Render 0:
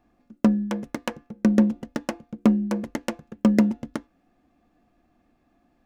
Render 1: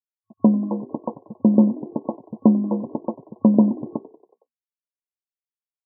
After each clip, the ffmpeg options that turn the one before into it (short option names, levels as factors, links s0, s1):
-filter_complex "[0:a]aeval=exprs='sgn(val(0))*max(abs(val(0))-0.00473,0)':c=same,asplit=6[s0][s1][s2][s3][s4][s5];[s1]adelay=92,afreqshift=46,volume=0.106[s6];[s2]adelay=184,afreqshift=92,volume=0.0646[s7];[s3]adelay=276,afreqshift=138,volume=0.0394[s8];[s4]adelay=368,afreqshift=184,volume=0.024[s9];[s5]adelay=460,afreqshift=230,volume=0.0146[s10];[s0][s6][s7][s8][s9][s10]amix=inputs=6:normalize=0,afftfilt=real='re*between(b*sr/4096,100,1100)':imag='im*between(b*sr/4096,100,1100)':win_size=4096:overlap=0.75,volume=1.5"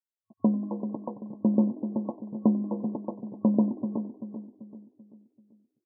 -filter_complex "[0:a]asplit=2[s0][s1];[s1]adelay=387,lowpass=f=820:p=1,volume=0.335,asplit=2[s2][s3];[s3]adelay=387,lowpass=f=820:p=1,volume=0.46,asplit=2[s4][s5];[s5]adelay=387,lowpass=f=820:p=1,volume=0.46,asplit=2[s6][s7];[s7]adelay=387,lowpass=f=820:p=1,volume=0.46,asplit=2[s8][s9];[s9]adelay=387,lowpass=f=820:p=1,volume=0.46[s10];[s0][s2][s4][s6][s8][s10]amix=inputs=6:normalize=0,volume=0.398"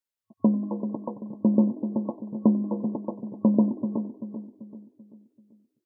-af "bandreject=f=750:w=12,volume=1.33"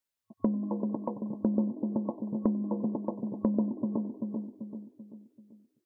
-af "acompressor=threshold=0.0282:ratio=2.5,volume=1.26"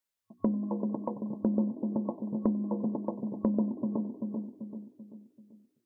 -af "bandreject=f=60:t=h:w=6,bandreject=f=120:t=h:w=6,bandreject=f=180:t=h:w=6,bandreject=f=240:t=h:w=6,bandreject=f=300:t=h:w=6,bandreject=f=360:t=h:w=6"